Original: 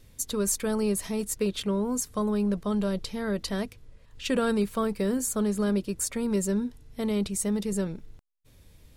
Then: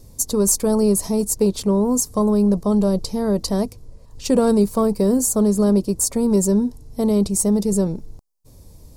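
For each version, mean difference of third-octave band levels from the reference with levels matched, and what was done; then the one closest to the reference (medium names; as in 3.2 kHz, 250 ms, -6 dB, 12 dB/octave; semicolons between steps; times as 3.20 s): 3.0 dB: in parallel at -8.5 dB: one-sided clip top -30.5 dBFS; on the sum: high-order bell 2.2 kHz -14.5 dB; trim +7.5 dB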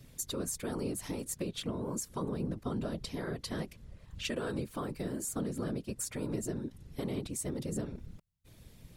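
6.5 dB: compression 4:1, threshold -35 dBFS, peak gain reduction 12 dB; whisper effect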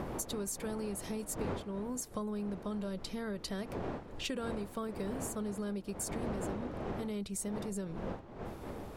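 8.5 dB: wind noise 530 Hz -30 dBFS; compression 6:1, threshold -37 dBFS, peak gain reduction 22.5 dB; trim +1 dB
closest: first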